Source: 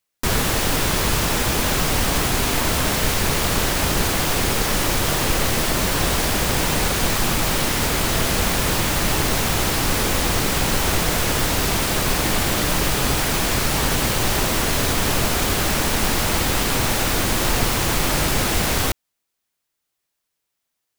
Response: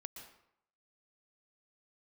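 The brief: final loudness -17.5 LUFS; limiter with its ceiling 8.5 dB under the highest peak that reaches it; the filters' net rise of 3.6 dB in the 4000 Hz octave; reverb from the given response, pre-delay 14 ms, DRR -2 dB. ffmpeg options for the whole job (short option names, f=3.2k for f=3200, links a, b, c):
-filter_complex "[0:a]equalizer=f=4k:t=o:g=4.5,alimiter=limit=-12.5dB:level=0:latency=1,asplit=2[a][b];[1:a]atrim=start_sample=2205,adelay=14[c];[b][c]afir=irnorm=-1:irlink=0,volume=6.5dB[d];[a][d]amix=inputs=2:normalize=0"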